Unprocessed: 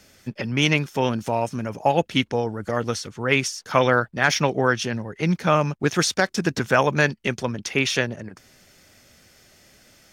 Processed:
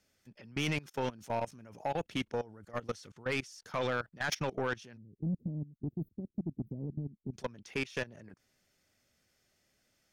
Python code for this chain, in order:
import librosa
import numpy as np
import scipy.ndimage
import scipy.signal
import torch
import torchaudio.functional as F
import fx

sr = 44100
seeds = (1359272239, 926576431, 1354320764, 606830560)

y = fx.level_steps(x, sr, step_db=23)
y = fx.cheby2_bandstop(y, sr, low_hz=1200.0, high_hz=8300.0, order=4, stop_db=70, at=(4.96, 7.33), fade=0.02)
y = 10.0 ** (-19.5 / 20.0) * np.tanh(y / 10.0 ** (-19.5 / 20.0))
y = y * librosa.db_to_amplitude(-6.0)